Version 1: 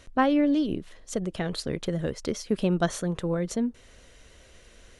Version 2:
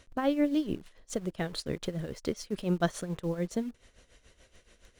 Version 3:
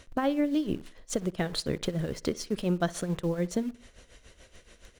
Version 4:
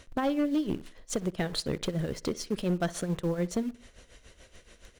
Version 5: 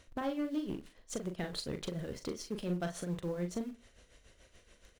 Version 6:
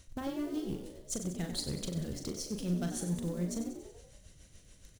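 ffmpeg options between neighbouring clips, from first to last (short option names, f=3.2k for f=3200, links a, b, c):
-filter_complex "[0:a]tremolo=f=7:d=0.75,asplit=2[a][b];[b]acrusher=bits=6:mix=0:aa=0.000001,volume=-10dB[c];[a][c]amix=inputs=2:normalize=0,volume=-4dB"
-filter_complex "[0:a]acompressor=threshold=-31dB:ratio=2.5,asplit=2[a][b];[b]adelay=62,lowpass=f=3.6k:p=1,volume=-21dB,asplit=2[c][d];[d]adelay=62,lowpass=f=3.6k:p=1,volume=0.47,asplit=2[e][f];[f]adelay=62,lowpass=f=3.6k:p=1,volume=0.47[g];[a][c][e][g]amix=inputs=4:normalize=0,volume=5.5dB"
-af "asoftclip=type=hard:threshold=-22dB"
-filter_complex "[0:a]asplit=2[a][b];[b]adelay=40,volume=-7dB[c];[a][c]amix=inputs=2:normalize=0,volume=-8dB"
-filter_complex "[0:a]bass=f=250:g=11,treble=f=4k:g=13,asplit=2[a][b];[b]asplit=6[c][d][e][f][g][h];[c]adelay=94,afreqshift=62,volume=-9.5dB[i];[d]adelay=188,afreqshift=124,volume=-14.7dB[j];[e]adelay=282,afreqshift=186,volume=-19.9dB[k];[f]adelay=376,afreqshift=248,volume=-25.1dB[l];[g]adelay=470,afreqshift=310,volume=-30.3dB[m];[h]adelay=564,afreqshift=372,volume=-35.5dB[n];[i][j][k][l][m][n]amix=inputs=6:normalize=0[o];[a][o]amix=inputs=2:normalize=0,volume=-5dB"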